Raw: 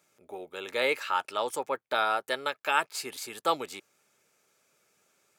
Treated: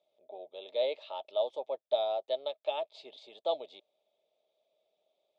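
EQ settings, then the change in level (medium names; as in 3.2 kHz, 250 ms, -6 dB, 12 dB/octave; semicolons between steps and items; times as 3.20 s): two resonant band-passes 1.5 kHz, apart 2.5 oct; distance through air 110 m; treble shelf 2.7 kHz -10.5 dB; +7.0 dB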